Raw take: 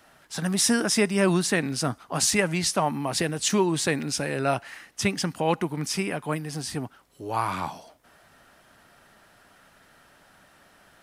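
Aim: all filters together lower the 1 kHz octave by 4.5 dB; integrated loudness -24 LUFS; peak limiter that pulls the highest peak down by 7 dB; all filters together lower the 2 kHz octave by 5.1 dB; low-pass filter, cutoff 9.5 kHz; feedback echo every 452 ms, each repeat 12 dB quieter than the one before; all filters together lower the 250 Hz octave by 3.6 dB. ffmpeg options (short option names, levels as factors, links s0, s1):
-af "lowpass=9500,equalizer=f=250:t=o:g=-5,equalizer=f=1000:t=o:g=-4.5,equalizer=f=2000:t=o:g=-5,alimiter=limit=0.126:level=0:latency=1,aecho=1:1:452|904|1356:0.251|0.0628|0.0157,volume=1.88"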